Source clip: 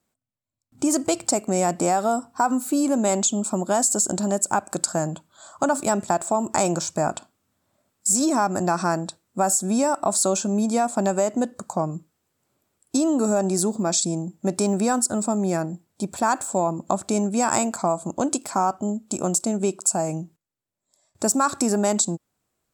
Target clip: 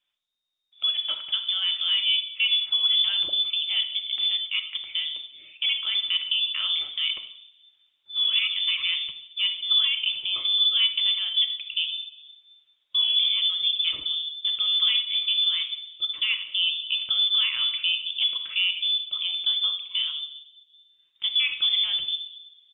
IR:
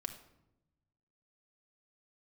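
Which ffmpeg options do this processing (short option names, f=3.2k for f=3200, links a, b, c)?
-filter_complex "[0:a]alimiter=limit=-13.5dB:level=0:latency=1:release=13,asplit=3[a][b][c];[a]afade=t=out:st=17.69:d=0.02[d];[b]asplit=4[e][f][g][h];[f]adelay=84,afreqshift=75,volume=-23dB[i];[g]adelay=168,afreqshift=150,volume=-30.1dB[j];[h]adelay=252,afreqshift=225,volume=-37.3dB[k];[e][i][j][k]amix=inputs=4:normalize=0,afade=t=in:st=17.69:d=0.02,afade=t=out:st=20.09:d=0.02[l];[c]afade=t=in:st=20.09:d=0.02[m];[d][l][m]amix=inputs=3:normalize=0[n];[1:a]atrim=start_sample=2205[o];[n][o]afir=irnorm=-1:irlink=0,lowpass=f=3.1k:t=q:w=0.5098,lowpass=f=3.1k:t=q:w=0.6013,lowpass=f=3.1k:t=q:w=0.9,lowpass=f=3.1k:t=q:w=2.563,afreqshift=-3700" -ar 48000 -c:a libopus -b:a 20k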